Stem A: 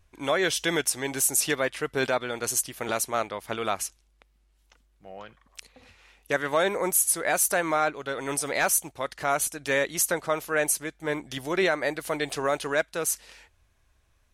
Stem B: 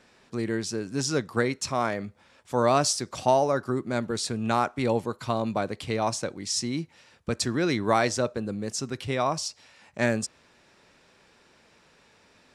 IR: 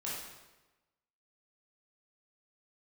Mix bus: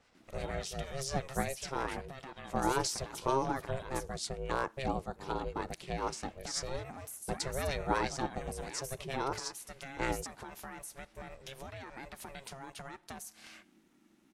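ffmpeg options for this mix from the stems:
-filter_complex "[0:a]alimiter=limit=-24dB:level=0:latency=1:release=118,acompressor=threshold=-42dB:ratio=6,adelay=150,volume=1dB,asplit=2[a][b];[b]volume=-21dB[c];[1:a]acrossover=split=950[d][e];[d]aeval=exprs='val(0)*(1-0.5/2+0.5/2*cos(2*PI*8.6*n/s))':c=same[f];[e]aeval=exprs='val(0)*(1-0.5/2-0.5/2*cos(2*PI*8.6*n/s))':c=same[g];[f][g]amix=inputs=2:normalize=0,volume=-4dB[h];[2:a]atrim=start_sample=2205[i];[c][i]afir=irnorm=-1:irlink=0[j];[a][h][j]amix=inputs=3:normalize=0,aeval=exprs='val(0)*sin(2*PI*270*n/s)':c=same"

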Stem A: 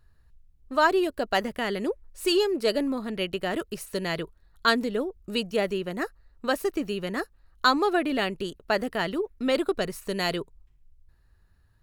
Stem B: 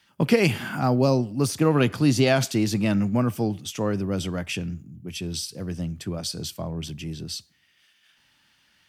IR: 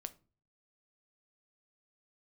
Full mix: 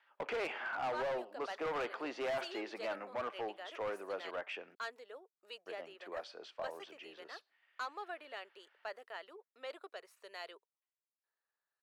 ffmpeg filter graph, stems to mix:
-filter_complex "[0:a]adelay=150,volume=-16.5dB[a];[1:a]lowpass=1.9k,volume=-2.5dB,asplit=3[b][c][d];[b]atrim=end=4.75,asetpts=PTS-STARTPTS,afade=t=out:st=4.746:d=0.004:c=hsin[e];[c]atrim=start=4.75:end=5.66,asetpts=PTS-STARTPTS,volume=0[f];[d]atrim=start=5.66,asetpts=PTS-STARTPTS,afade=t=in:d=0.004:c=hsin[g];[e][f][g]concat=n=3:v=0:a=1[h];[a][h]amix=inputs=2:normalize=0,highpass=f=480:w=0.5412,highpass=f=480:w=1.3066,asoftclip=type=hard:threshold=-31.5dB,asplit=2[i][j];[j]highpass=f=720:p=1,volume=3dB,asoftclip=type=tanh:threshold=-31.5dB[k];[i][k]amix=inputs=2:normalize=0,lowpass=f=2.6k:p=1,volume=-6dB"

